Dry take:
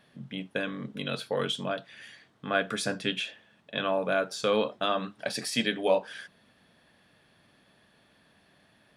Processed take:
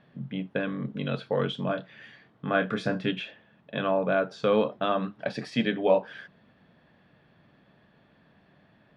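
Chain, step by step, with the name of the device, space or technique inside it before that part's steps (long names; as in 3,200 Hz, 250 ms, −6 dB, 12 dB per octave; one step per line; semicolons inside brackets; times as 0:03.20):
phone in a pocket (low-pass filter 3,900 Hz 12 dB per octave; parametric band 150 Hz +4.5 dB 0.85 octaves; high-shelf EQ 2,200 Hz −9 dB)
0:01.66–0:03.11: double-tracking delay 27 ms −8 dB
level +3 dB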